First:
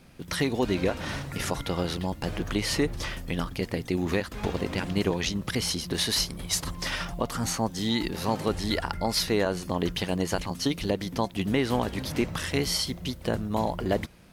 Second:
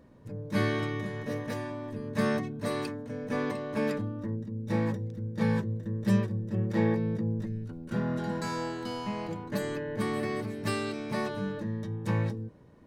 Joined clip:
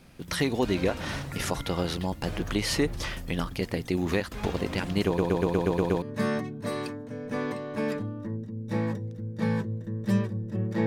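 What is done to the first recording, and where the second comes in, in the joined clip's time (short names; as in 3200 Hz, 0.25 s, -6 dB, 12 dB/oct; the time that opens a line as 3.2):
first
5.06 stutter in place 0.12 s, 8 plays
6.02 switch to second from 2.01 s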